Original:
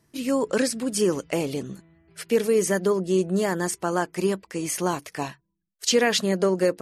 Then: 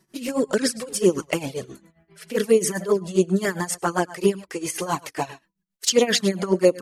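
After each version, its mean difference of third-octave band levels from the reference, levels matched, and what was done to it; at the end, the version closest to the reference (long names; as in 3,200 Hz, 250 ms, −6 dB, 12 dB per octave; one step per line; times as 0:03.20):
4.5 dB: single-tap delay 103 ms −17.5 dB
amplitude tremolo 7.5 Hz, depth 84%
low-shelf EQ 140 Hz −6 dB
flanger swept by the level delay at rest 5.4 ms, full sweep at −20 dBFS
level +8.5 dB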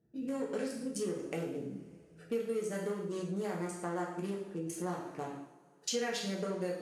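6.5 dB: adaptive Wiener filter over 41 samples
high-pass filter 130 Hz 6 dB per octave
coupled-rooms reverb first 0.59 s, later 3 s, from −27 dB, DRR −3 dB
downward compressor 2.5 to 1, threshold −31 dBFS, peak gain reduction 13.5 dB
level −6.5 dB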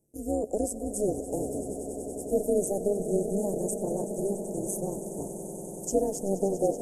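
12.5 dB: elliptic band-stop filter 570–7,500 Hz, stop band 40 dB
low-shelf EQ 120 Hz −12 dB
amplitude modulation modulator 200 Hz, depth 70%
on a send: echo that builds up and dies away 95 ms, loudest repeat 8, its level −15 dB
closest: first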